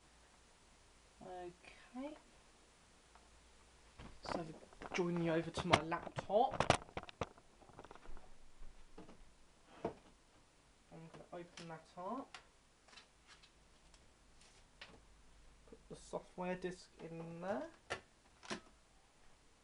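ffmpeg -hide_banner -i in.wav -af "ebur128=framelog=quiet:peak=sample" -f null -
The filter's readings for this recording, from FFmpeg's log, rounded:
Integrated loudness:
  I:         -42.6 LUFS
  Threshold: -56.0 LUFS
Loudness range:
  LRA:        17.9 LU
  Threshold: -65.5 LUFS
  LRA low:   -56.7 LUFS
  LRA high:  -38.8 LUFS
Sample peak:
  Peak:      -11.2 dBFS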